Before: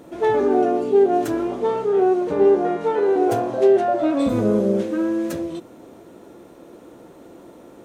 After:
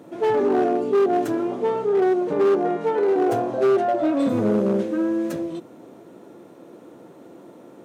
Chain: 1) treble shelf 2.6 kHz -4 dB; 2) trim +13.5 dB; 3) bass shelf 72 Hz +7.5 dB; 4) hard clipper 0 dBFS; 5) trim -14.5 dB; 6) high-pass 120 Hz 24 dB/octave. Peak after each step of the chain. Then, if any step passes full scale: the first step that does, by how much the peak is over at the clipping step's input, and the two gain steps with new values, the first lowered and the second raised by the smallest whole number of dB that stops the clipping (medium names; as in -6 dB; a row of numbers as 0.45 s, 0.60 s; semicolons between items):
-6.5 dBFS, +7.0 dBFS, +7.0 dBFS, 0.0 dBFS, -14.5 dBFS, -10.0 dBFS; step 2, 7.0 dB; step 2 +6.5 dB, step 5 -7.5 dB